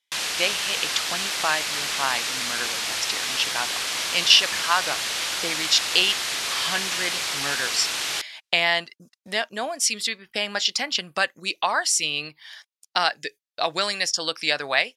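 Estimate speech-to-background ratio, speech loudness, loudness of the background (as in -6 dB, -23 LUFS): 1.0 dB, -24.0 LUFS, -25.0 LUFS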